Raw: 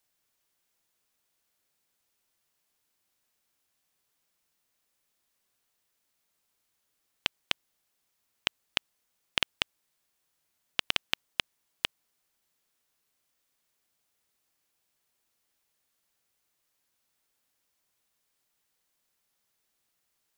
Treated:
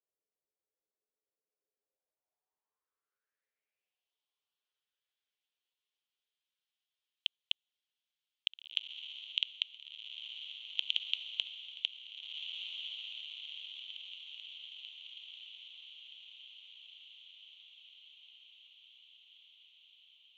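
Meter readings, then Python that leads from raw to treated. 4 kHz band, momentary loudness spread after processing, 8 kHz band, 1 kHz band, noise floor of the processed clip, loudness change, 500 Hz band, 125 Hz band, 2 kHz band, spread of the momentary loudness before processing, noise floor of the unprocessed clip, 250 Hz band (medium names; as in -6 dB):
-0.5 dB, 22 LU, under -15 dB, under -25 dB, under -85 dBFS, -6.5 dB, under -25 dB, under -35 dB, -8.5 dB, 5 LU, -78 dBFS, under -30 dB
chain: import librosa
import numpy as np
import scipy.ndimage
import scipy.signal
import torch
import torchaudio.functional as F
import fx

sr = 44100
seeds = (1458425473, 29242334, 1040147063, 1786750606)

y = fx.env_flanger(x, sr, rest_ms=10.4, full_db=-43.0)
y = fx.filter_sweep_bandpass(y, sr, from_hz=450.0, to_hz=3200.0, start_s=1.78, end_s=4.13, q=4.4)
y = fx.echo_diffused(y, sr, ms=1726, feedback_pct=59, wet_db=-5)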